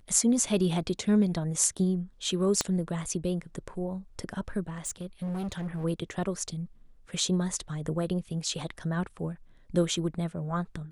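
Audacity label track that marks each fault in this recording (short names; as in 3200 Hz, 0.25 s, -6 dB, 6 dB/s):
2.610000	2.610000	pop -11 dBFS
4.680000	5.850000	clipped -30 dBFS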